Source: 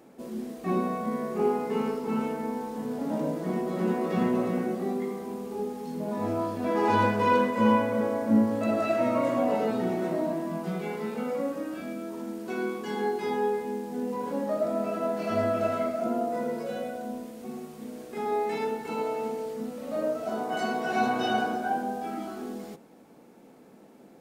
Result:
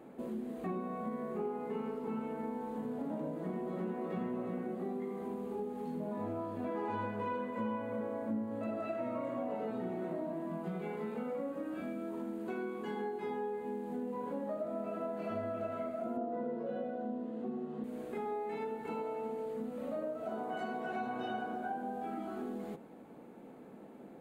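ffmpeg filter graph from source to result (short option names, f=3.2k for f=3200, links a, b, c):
-filter_complex "[0:a]asettb=1/sr,asplit=3[a][b][c];[a]atrim=end=16.174[d];[b]atrim=start=16.17:end=17.84,asetpts=PTS-STARTPTS,afade=t=in:d=0.004:c=qsin,afade=t=out:st=1.666:d=0.004:c=qsin,highpass=210,lowpass=3.8k,lowshelf=f=460:g=10,bandreject=f=2.3k:w=5.1[e];[c]atrim=start=17.836[f];[d][e]acrossfade=d=0.004:c1=hsin:c2=qsin[g];[g][f]acrossfade=d=0.004:c1=qsin:c2=hsin,equalizer=f=5.4k:w=3:g=-11,acompressor=threshold=-38dB:ratio=4,highshelf=f=3.3k:g=-10,volume=1dB"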